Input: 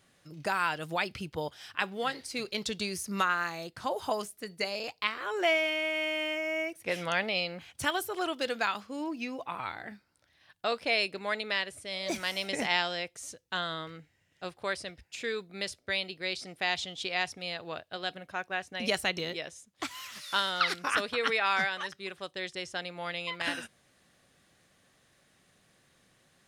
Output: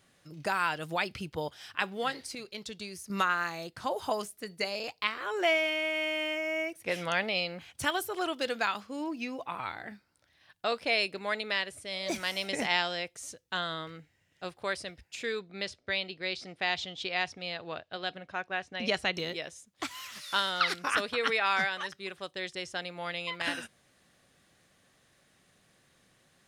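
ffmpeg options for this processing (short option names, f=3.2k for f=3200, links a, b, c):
-filter_complex "[0:a]asettb=1/sr,asplit=3[a][b][c];[a]atrim=end=15.394[d];[b]atrim=start=15.39:end=19.14,asetpts=PTS-STARTPTS,afade=t=in:d=0.004:c=qsin,afade=t=out:st=3.746:d=0.004:c=qsin,lowpass=5.4k[e];[c]atrim=start=19.136[f];[d][e]acrossfade=d=0.004:c1=hsin:c2=qsin[g];[g][f]acrossfade=d=0.004:c1=qsin:c2=hsin,asplit=3[h][i][j];[h]atrim=end=2.352[k];[i]atrim=start=2.348:end=3.102,asetpts=PTS-STARTPTS,volume=-7.5dB[l];[j]atrim=start=3.098[m];[k][l]acrossfade=d=0.004:c1=hsin:c2=hsin[n];[n][m]acrossfade=d=0.004:c1=hsin:c2=hsin"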